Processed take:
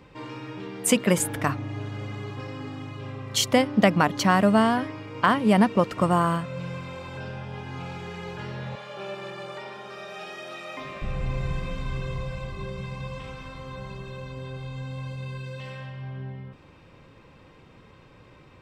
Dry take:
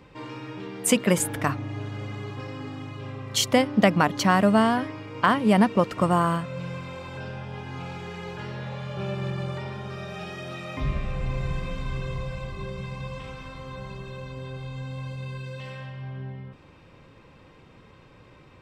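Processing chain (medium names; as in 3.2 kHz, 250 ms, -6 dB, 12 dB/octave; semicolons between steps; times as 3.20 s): 8.75–11.02 s: high-pass 380 Hz 12 dB/octave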